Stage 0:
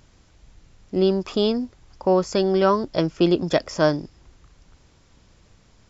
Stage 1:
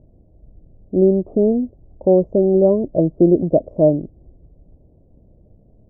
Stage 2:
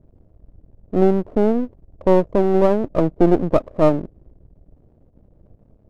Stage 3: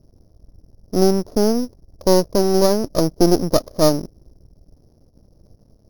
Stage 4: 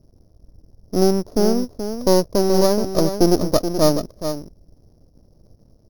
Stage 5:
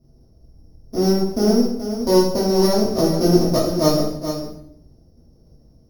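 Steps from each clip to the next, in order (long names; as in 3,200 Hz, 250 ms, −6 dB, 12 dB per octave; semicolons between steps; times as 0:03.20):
elliptic low-pass filter 650 Hz, stop band 60 dB; level +6 dB
gain on one half-wave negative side −12 dB; level +1.5 dB
samples sorted by size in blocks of 8 samples
single-tap delay 427 ms −9 dB; level −1 dB
convolution reverb RT60 0.75 s, pre-delay 3 ms, DRR −7 dB; level −8 dB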